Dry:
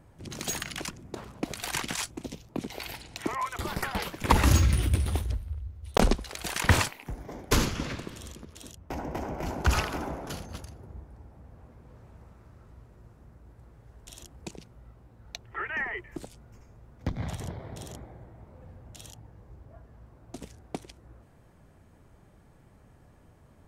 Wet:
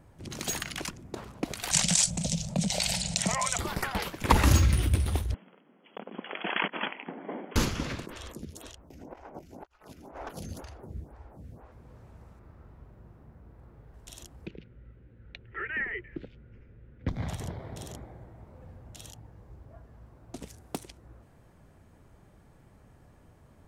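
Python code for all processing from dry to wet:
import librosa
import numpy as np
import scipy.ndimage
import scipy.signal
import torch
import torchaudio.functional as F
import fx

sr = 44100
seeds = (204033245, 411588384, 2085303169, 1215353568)

y = fx.chain(x, sr, fx.curve_eq(hz=(120.0, 180.0, 270.0, 390.0, 580.0, 1100.0, 1900.0, 8200.0, 14000.0), db=(0, 14, -14, -18, 4, -9, -4, 14, -13)),
    fx.env_flatten(amount_pct=50), at=(1.71, 3.59))
y = fx.chain(y, sr, fx.over_compress(threshold_db=-29.0, ratio=-0.5),
    fx.brickwall_bandpass(low_hz=170.0, high_hz=3400.0), at=(5.34, 7.56))
y = fx.chain(y, sr, fx.over_compress(threshold_db=-40.0, ratio=-0.5),
    fx.stagger_phaser(hz=2.0), at=(8.06, 11.72))
y = fx.chain(y, sr, fx.peak_eq(hz=7700.0, db=-11.5, octaves=2.1),
    fx.doubler(ms=40.0, db=-3.5), at=(12.39, 13.94))
y = fx.chain(y, sr, fx.lowpass(hz=3000.0, slope=24),
    fx.band_shelf(hz=870.0, db=-13.5, octaves=1.1), at=(14.46, 17.08))
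y = fx.chain(y, sr, fx.self_delay(depth_ms=0.14),
    fx.highpass(hz=47.0, slope=12),
    fx.peak_eq(hz=11000.0, db=10.5, octaves=1.6), at=(20.48, 20.88))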